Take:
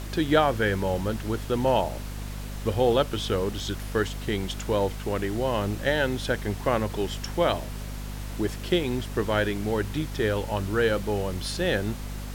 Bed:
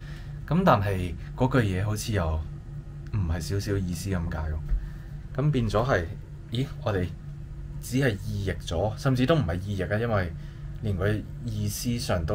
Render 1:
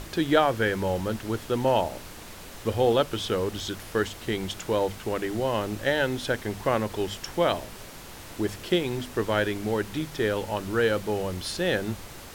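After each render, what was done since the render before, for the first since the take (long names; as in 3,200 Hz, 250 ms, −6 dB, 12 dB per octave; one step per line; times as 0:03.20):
mains-hum notches 50/100/150/200/250 Hz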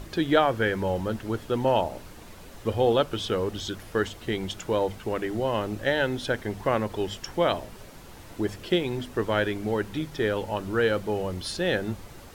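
broadband denoise 7 dB, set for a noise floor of −43 dBFS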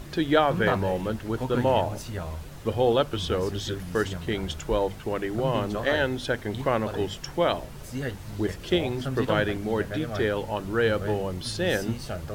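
mix in bed −7.5 dB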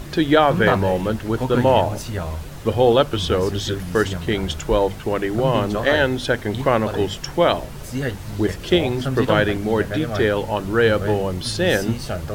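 level +7 dB
brickwall limiter −3 dBFS, peak gain reduction 2.5 dB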